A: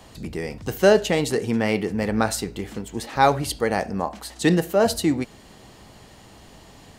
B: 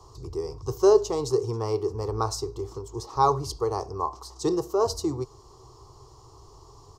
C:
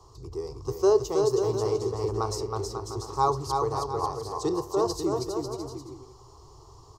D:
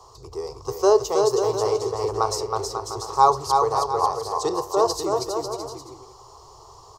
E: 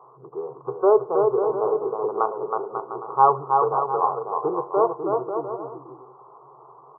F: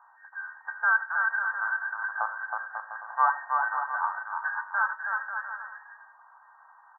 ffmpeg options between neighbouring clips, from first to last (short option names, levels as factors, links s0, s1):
-af "firequalizer=gain_entry='entry(130,0);entry(190,-27);entry(390,4);entry(570,-14);entry(1100,6);entry(1600,-26);entry(2500,-24);entry(5400,1);entry(9400,-15);entry(14000,-13)':delay=0.05:min_phase=1"
-af "aecho=1:1:320|544|700.8|810.6|887.4:0.631|0.398|0.251|0.158|0.1,volume=0.708"
-af "lowshelf=f=400:t=q:w=1.5:g=-9.5,volume=2.24"
-af "afftfilt=real='re*between(b*sr/4096,120,1500)':imag='im*between(b*sr/4096,120,1500)':win_size=4096:overlap=0.75"
-af "afftfilt=real='real(if(between(b,1,1012),(2*floor((b-1)/92)+1)*92-b,b),0)':imag='imag(if(between(b,1,1012),(2*floor((b-1)/92)+1)*92-b,b),0)*if(between(b,1,1012),-1,1)':win_size=2048:overlap=0.75,highpass=460,aecho=1:1:90:0.15,volume=0.447"